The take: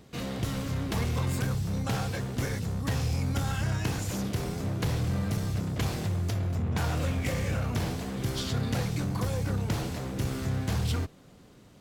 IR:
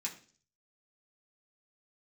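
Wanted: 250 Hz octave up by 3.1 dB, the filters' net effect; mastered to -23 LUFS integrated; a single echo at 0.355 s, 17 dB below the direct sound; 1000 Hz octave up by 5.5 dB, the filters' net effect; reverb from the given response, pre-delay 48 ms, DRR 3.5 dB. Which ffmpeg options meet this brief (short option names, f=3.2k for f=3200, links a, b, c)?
-filter_complex "[0:a]equalizer=f=250:t=o:g=4,equalizer=f=1k:t=o:g=7,aecho=1:1:355:0.141,asplit=2[a][b];[1:a]atrim=start_sample=2205,adelay=48[c];[b][c]afir=irnorm=-1:irlink=0,volume=-3.5dB[d];[a][d]amix=inputs=2:normalize=0,volume=5dB"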